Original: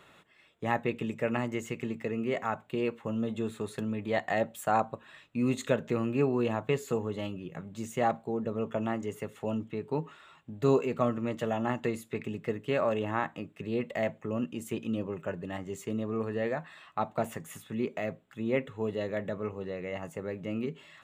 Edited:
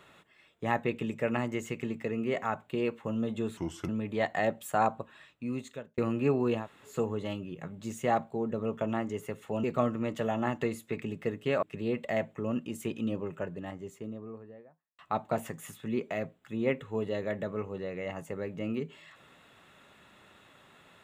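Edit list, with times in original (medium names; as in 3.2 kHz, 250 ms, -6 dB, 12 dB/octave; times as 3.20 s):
3.57–3.82 s: speed 79%
4.92–5.91 s: fade out
6.55–6.84 s: room tone, crossfade 0.16 s
9.57–10.86 s: delete
12.85–13.49 s: delete
14.92–16.85 s: studio fade out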